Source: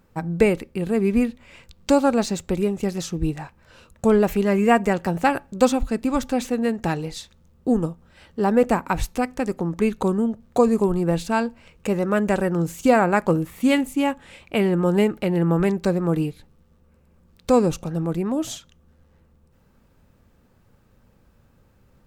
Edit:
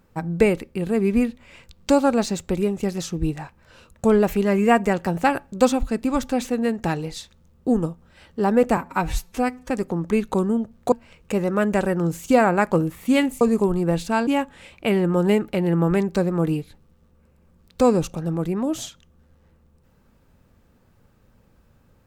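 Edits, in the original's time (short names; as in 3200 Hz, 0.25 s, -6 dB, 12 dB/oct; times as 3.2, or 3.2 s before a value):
8.77–9.39 stretch 1.5×
10.61–11.47 move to 13.96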